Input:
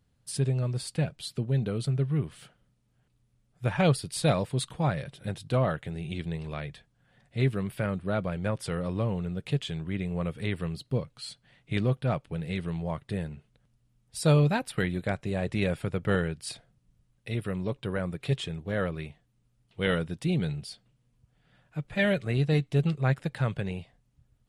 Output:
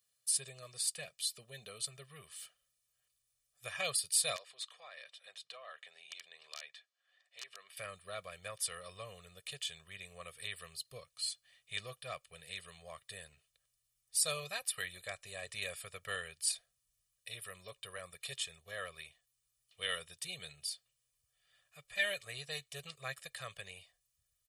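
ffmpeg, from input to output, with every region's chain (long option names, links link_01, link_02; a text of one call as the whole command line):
ffmpeg -i in.wav -filter_complex "[0:a]asettb=1/sr,asplit=3[link_01][link_02][link_03];[link_01]atrim=end=4.364[link_04];[link_02]atrim=start=4.36:end=7.77,asetpts=PTS-STARTPTS,afade=type=in:duration=0.004:curve=qsin,afade=type=out:start_time=3.406:duration=0.004:curve=qsin,acompressor=threshold=-31dB:ratio=4:attack=3.2:release=140:knee=1:detection=peak,aeval=exprs='(mod(16.8*val(0)+1,2)-1)/16.8':channel_layout=same,highpass=550,lowpass=4400[link_05];[link_03]atrim=start=7.766[link_06];[link_04][link_05]acrossfade=duration=0.004:curve1=hsin:curve2=qsin[link_07];[link_07][link_06]acrossfade=duration=0.004:curve1=qsin:curve2=hsin,aderivative,aecho=1:1:1.7:0.91,asubboost=boost=8.5:cutoff=62,volume=2.5dB" out.wav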